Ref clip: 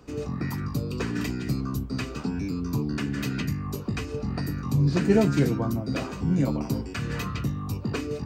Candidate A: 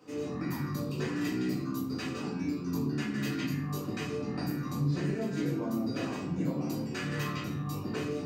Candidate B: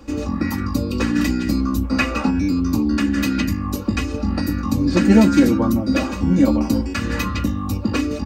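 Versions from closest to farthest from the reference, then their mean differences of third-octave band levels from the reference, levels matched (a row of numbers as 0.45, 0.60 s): B, A; 2.5, 5.0 dB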